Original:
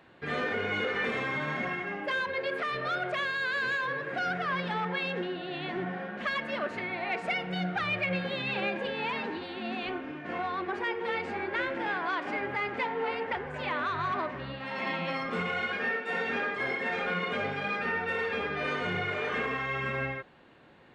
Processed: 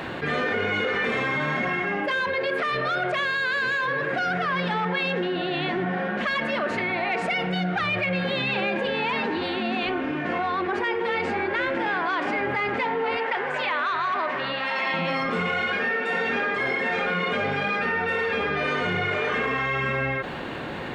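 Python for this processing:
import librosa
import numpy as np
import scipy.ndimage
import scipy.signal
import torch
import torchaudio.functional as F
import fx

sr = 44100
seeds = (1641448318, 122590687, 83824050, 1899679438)

y = fx.weighting(x, sr, curve='A', at=(13.17, 14.94))
y = fx.env_flatten(y, sr, amount_pct=70)
y = y * 10.0 ** (3.5 / 20.0)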